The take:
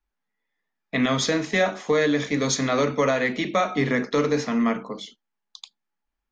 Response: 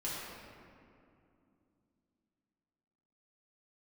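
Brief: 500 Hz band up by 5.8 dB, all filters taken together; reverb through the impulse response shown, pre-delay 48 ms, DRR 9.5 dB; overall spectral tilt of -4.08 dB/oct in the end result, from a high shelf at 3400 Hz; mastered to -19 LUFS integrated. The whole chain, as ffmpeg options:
-filter_complex "[0:a]equalizer=f=500:t=o:g=6.5,highshelf=f=3.4k:g=5.5,asplit=2[a][b];[1:a]atrim=start_sample=2205,adelay=48[c];[b][c]afir=irnorm=-1:irlink=0,volume=-13dB[d];[a][d]amix=inputs=2:normalize=0"

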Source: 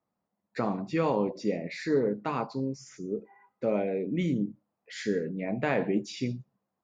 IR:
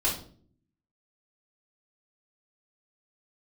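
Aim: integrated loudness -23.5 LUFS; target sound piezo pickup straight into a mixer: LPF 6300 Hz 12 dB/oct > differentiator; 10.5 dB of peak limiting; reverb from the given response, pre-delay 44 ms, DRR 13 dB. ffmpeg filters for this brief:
-filter_complex "[0:a]alimiter=level_in=1dB:limit=-24dB:level=0:latency=1,volume=-1dB,asplit=2[a][b];[1:a]atrim=start_sample=2205,adelay=44[c];[b][c]afir=irnorm=-1:irlink=0,volume=-22dB[d];[a][d]amix=inputs=2:normalize=0,lowpass=6.3k,aderivative,volume=29.5dB"

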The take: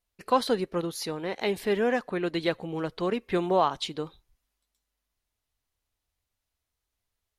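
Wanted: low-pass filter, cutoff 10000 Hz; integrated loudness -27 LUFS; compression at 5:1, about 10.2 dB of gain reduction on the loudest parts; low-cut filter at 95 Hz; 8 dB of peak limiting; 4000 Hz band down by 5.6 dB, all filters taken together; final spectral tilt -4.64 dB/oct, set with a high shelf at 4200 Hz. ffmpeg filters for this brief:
-af "highpass=95,lowpass=10k,equalizer=f=4k:t=o:g=-4,highshelf=f=4.2k:g=-5.5,acompressor=threshold=-29dB:ratio=5,volume=9dB,alimiter=limit=-16dB:level=0:latency=1"

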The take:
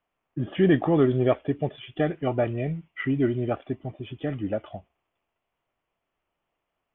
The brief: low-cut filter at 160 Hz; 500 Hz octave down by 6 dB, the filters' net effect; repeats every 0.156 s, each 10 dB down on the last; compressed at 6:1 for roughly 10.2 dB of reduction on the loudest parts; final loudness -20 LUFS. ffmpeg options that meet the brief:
-af "highpass=160,equalizer=f=500:t=o:g=-8.5,acompressor=threshold=-30dB:ratio=6,aecho=1:1:156|312|468|624:0.316|0.101|0.0324|0.0104,volume=16dB"

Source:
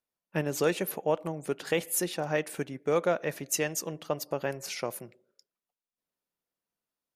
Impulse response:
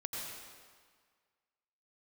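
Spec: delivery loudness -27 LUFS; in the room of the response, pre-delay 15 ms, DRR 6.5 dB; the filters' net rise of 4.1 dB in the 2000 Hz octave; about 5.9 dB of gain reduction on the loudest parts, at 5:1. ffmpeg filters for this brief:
-filter_complex "[0:a]equalizer=f=2k:t=o:g=5,acompressor=threshold=-27dB:ratio=5,asplit=2[a][b];[1:a]atrim=start_sample=2205,adelay=15[c];[b][c]afir=irnorm=-1:irlink=0,volume=-8dB[d];[a][d]amix=inputs=2:normalize=0,volume=6dB"

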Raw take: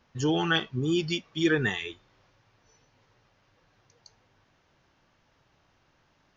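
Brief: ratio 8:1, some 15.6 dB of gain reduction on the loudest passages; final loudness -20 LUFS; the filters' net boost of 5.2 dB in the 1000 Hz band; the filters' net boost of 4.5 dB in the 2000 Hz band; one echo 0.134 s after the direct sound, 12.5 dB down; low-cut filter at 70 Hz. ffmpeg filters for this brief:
-af "highpass=70,equalizer=f=1k:t=o:g=6,equalizer=f=2k:t=o:g=3.5,acompressor=threshold=-34dB:ratio=8,aecho=1:1:134:0.237,volume=18dB"

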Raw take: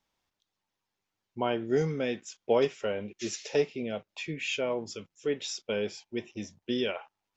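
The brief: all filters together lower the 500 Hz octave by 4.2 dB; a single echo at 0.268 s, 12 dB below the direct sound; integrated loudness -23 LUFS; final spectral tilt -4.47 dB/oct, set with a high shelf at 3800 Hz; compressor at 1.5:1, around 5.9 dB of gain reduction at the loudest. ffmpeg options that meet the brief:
-af "equalizer=f=500:t=o:g=-5,highshelf=f=3.8k:g=-4.5,acompressor=threshold=-40dB:ratio=1.5,aecho=1:1:268:0.251,volume=16dB"

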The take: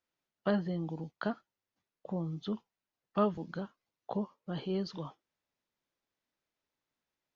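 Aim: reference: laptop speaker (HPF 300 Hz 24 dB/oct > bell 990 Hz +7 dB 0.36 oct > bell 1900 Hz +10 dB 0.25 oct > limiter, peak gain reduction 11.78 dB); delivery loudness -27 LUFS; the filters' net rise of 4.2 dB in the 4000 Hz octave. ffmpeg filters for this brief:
-af "highpass=f=300:w=0.5412,highpass=f=300:w=1.3066,equalizer=f=990:t=o:w=0.36:g=7,equalizer=f=1.9k:t=o:w=0.25:g=10,equalizer=f=4k:t=o:g=5,volume=16dB,alimiter=limit=-13dB:level=0:latency=1"

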